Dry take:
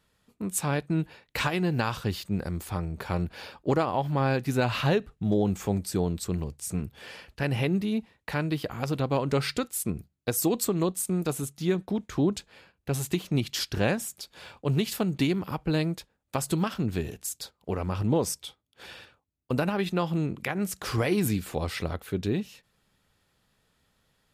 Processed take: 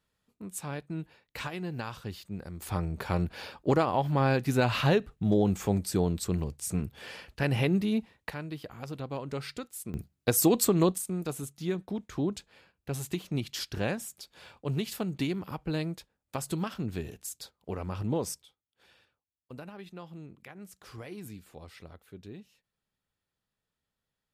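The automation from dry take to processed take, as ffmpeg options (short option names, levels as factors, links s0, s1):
-af "asetnsamples=n=441:p=0,asendcmd='2.62 volume volume 0dB;8.3 volume volume -10dB;9.94 volume volume 2.5dB;10.98 volume volume -5.5dB;18.42 volume volume -17.5dB',volume=0.335"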